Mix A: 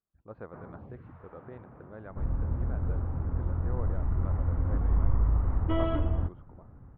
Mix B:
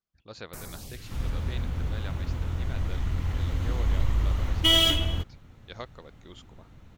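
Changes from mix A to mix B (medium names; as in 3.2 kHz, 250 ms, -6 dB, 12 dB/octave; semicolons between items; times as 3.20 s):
first sound: remove high-pass 110 Hz; second sound: entry -1.05 s; master: remove low-pass 1.3 kHz 24 dB/octave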